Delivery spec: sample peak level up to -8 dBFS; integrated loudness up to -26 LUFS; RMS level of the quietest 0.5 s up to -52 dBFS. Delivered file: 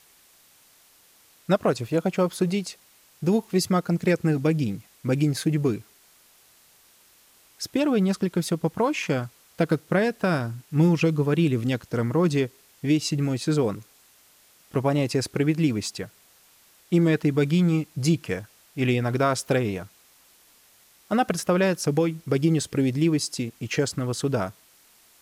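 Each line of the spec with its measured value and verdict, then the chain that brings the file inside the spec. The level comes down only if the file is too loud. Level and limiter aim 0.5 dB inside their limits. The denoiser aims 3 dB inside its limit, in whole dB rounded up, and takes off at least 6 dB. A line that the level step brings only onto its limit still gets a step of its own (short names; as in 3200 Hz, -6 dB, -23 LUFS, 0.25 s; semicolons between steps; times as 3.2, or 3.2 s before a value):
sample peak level -10.5 dBFS: OK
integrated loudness -24.5 LUFS: fail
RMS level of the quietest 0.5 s -57 dBFS: OK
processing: gain -2 dB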